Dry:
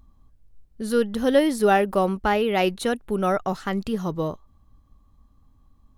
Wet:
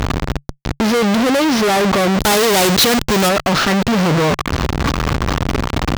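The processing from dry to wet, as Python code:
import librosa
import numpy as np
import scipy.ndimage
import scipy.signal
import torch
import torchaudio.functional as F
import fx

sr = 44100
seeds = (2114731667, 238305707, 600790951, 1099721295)

y = fx.delta_mod(x, sr, bps=32000, step_db=-28.5)
y = fx.fuzz(y, sr, gain_db=41.0, gate_db=-43.0)
y = fx.high_shelf(y, sr, hz=4900.0, db=12.0, at=(2.19, 3.29))
y = fx.highpass(y, sr, hz=74.0, slope=6)
y = fx.peak_eq(y, sr, hz=140.0, db=3.5, octaves=0.2)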